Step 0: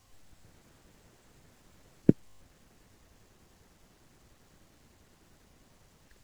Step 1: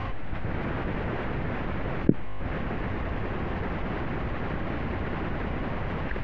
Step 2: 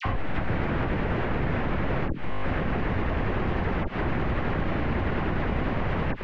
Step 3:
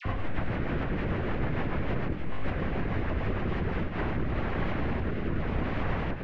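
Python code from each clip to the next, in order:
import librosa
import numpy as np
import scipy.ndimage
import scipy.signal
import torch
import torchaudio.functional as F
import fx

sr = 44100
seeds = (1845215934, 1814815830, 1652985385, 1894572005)

y1 = scipy.signal.sosfilt(scipy.signal.butter(4, 2400.0, 'lowpass', fs=sr, output='sos'), x)
y1 = fx.env_flatten(y1, sr, amount_pct=70)
y2 = fx.auto_swell(y1, sr, attack_ms=137.0)
y2 = fx.dispersion(y2, sr, late='lows', ms=52.0, hz=1400.0)
y2 = fx.band_squash(y2, sr, depth_pct=70)
y2 = y2 * librosa.db_to_amplitude(3.5)
y3 = fx.rotary_switch(y2, sr, hz=6.7, then_hz=0.85, switch_at_s=3.4)
y3 = y3 + 10.0 ** (-7.0 / 20.0) * np.pad(y3, (int(99 * sr / 1000.0), 0))[:len(y3)]
y3 = fx.vibrato_shape(y3, sr, shape='saw_up', rate_hz=3.6, depth_cents=100.0)
y3 = y3 * librosa.db_to_amplitude(-2.5)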